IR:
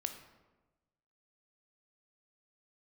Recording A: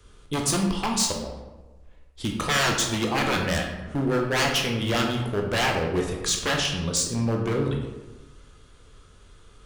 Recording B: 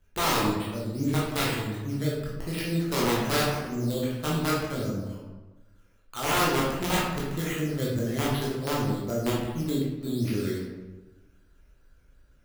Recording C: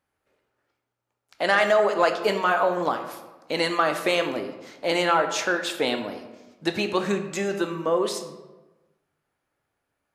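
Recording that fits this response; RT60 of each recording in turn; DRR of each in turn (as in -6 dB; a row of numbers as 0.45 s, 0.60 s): C; 1.2 s, 1.2 s, 1.2 s; 1.0 dB, -6.0 dB, 6.5 dB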